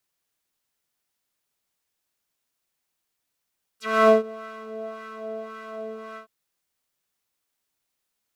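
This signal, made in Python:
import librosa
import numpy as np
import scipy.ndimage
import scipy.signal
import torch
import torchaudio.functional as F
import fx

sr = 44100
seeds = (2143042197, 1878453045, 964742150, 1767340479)

y = fx.sub_patch_wobble(sr, seeds[0], note=69, wave='triangle', wave2='saw', interval_st=7, level2_db=-7.5, sub_db=-1.0, noise_db=-11.0, kind='bandpass', cutoff_hz=880.0, q=2.2, env_oct=3.5, env_decay_s=0.06, env_sustain_pct=0, attack_ms=286.0, decay_s=0.14, sustain_db=-23.0, release_s=0.11, note_s=2.36, lfo_hz=1.8, wobble_oct=0.6)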